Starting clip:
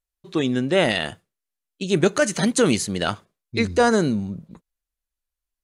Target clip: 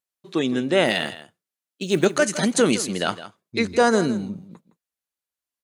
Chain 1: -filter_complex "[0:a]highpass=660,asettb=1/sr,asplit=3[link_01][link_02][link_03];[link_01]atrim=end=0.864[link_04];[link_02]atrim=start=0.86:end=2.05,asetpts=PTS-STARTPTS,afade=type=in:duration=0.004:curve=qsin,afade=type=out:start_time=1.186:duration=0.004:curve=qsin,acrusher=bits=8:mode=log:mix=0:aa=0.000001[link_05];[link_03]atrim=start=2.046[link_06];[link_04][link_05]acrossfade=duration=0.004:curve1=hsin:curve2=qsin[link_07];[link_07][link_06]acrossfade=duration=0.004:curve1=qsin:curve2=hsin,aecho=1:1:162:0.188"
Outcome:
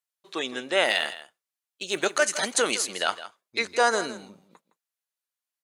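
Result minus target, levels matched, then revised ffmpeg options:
125 Hz band −16.5 dB
-filter_complex "[0:a]highpass=170,asettb=1/sr,asplit=3[link_01][link_02][link_03];[link_01]atrim=end=0.864[link_04];[link_02]atrim=start=0.86:end=2.05,asetpts=PTS-STARTPTS,afade=type=in:duration=0.004:curve=qsin,afade=type=out:start_time=1.186:duration=0.004:curve=qsin,acrusher=bits=8:mode=log:mix=0:aa=0.000001[link_05];[link_03]atrim=start=2.046[link_06];[link_04][link_05]acrossfade=duration=0.004:curve1=hsin:curve2=qsin[link_07];[link_07][link_06]acrossfade=duration=0.004:curve1=qsin:curve2=hsin,aecho=1:1:162:0.188"

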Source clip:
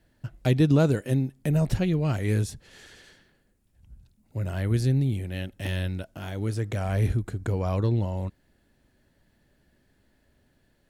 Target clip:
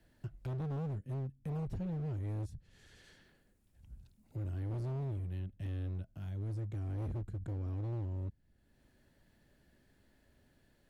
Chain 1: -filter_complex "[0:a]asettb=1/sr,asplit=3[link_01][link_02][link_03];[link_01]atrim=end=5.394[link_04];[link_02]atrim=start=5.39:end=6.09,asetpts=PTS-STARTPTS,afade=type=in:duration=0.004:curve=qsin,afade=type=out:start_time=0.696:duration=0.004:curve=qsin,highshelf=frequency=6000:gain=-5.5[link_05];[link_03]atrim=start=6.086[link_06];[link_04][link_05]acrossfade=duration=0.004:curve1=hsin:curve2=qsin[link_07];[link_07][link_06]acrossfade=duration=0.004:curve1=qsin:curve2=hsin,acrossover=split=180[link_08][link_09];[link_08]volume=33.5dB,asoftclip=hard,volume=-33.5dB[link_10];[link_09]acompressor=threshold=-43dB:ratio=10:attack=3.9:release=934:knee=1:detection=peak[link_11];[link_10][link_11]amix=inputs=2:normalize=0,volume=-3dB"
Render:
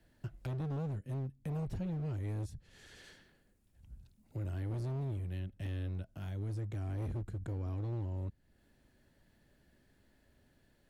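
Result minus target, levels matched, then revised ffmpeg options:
downward compressor: peak gain reduction −6 dB
-filter_complex "[0:a]asettb=1/sr,asplit=3[link_01][link_02][link_03];[link_01]atrim=end=5.394[link_04];[link_02]atrim=start=5.39:end=6.09,asetpts=PTS-STARTPTS,afade=type=in:duration=0.004:curve=qsin,afade=type=out:start_time=0.696:duration=0.004:curve=qsin,highshelf=frequency=6000:gain=-5.5[link_05];[link_03]atrim=start=6.086[link_06];[link_04][link_05]acrossfade=duration=0.004:curve1=hsin:curve2=qsin[link_07];[link_07][link_06]acrossfade=duration=0.004:curve1=qsin:curve2=hsin,acrossover=split=180[link_08][link_09];[link_08]volume=33.5dB,asoftclip=hard,volume=-33.5dB[link_10];[link_09]acompressor=threshold=-49.5dB:ratio=10:attack=3.9:release=934:knee=1:detection=peak[link_11];[link_10][link_11]amix=inputs=2:normalize=0,volume=-3dB"

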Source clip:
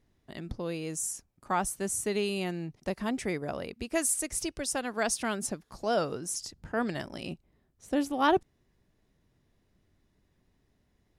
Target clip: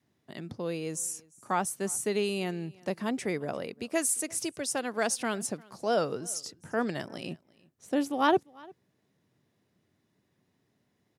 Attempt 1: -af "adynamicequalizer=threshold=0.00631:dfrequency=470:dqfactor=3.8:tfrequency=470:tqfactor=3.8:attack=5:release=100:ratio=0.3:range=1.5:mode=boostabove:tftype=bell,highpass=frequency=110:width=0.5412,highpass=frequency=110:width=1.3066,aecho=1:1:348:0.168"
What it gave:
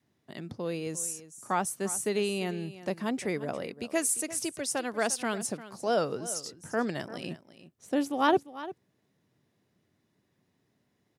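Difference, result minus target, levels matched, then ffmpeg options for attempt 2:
echo-to-direct +9.5 dB
-af "adynamicequalizer=threshold=0.00631:dfrequency=470:dqfactor=3.8:tfrequency=470:tqfactor=3.8:attack=5:release=100:ratio=0.3:range=1.5:mode=boostabove:tftype=bell,highpass=frequency=110:width=0.5412,highpass=frequency=110:width=1.3066,aecho=1:1:348:0.0562"

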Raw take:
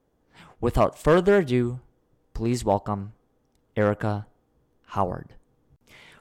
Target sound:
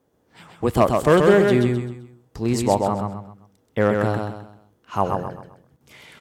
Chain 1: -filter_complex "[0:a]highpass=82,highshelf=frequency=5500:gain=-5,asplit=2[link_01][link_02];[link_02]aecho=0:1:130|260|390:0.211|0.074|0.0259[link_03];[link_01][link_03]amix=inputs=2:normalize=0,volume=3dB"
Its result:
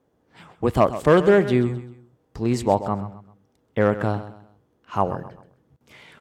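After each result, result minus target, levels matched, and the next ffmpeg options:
echo-to-direct −9.5 dB; 8,000 Hz band −6.0 dB
-filter_complex "[0:a]highpass=82,highshelf=frequency=5500:gain=-5,asplit=2[link_01][link_02];[link_02]aecho=0:1:130|260|390|520:0.631|0.221|0.0773|0.0271[link_03];[link_01][link_03]amix=inputs=2:normalize=0,volume=3dB"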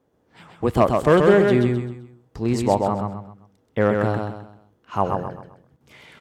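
8,000 Hz band −5.5 dB
-filter_complex "[0:a]highpass=82,highshelf=frequency=5500:gain=3.5,asplit=2[link_01][link_02];[link_02]aecho=0:1:130|260|390|520:0.631|0.221|0.0773|0.0271[link_03];[link_01][link_03]amix=inputs=2:normalize=0,volume=3dB"

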